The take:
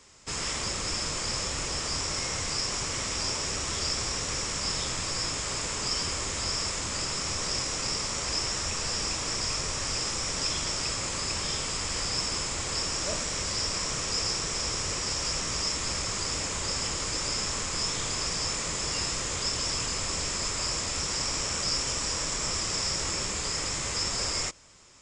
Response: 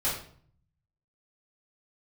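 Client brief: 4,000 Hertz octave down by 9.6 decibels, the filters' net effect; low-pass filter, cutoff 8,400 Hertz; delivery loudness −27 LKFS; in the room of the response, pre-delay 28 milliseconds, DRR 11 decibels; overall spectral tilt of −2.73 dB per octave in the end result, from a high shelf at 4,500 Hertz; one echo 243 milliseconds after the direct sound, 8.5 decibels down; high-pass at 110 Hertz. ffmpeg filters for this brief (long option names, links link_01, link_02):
-filter_complex "[0:a]highpass=110,lowpass=8400,equalizer=frequency=4000:width_type=o:gain=-7.5,highshelf=frequency=4500:gain=-8,aecho=1:1:243:0.376,asplit=2[link_01][link_02];[1:a]atrim=start_sample=2205,adelay=28[link_03];[link_02][link_03]afir=irnorm=-1:irlink=0,volume=-19.5dB[link_04];[link_01][link_04]amix=inputs=2:normalize=0,volume=7.5dB"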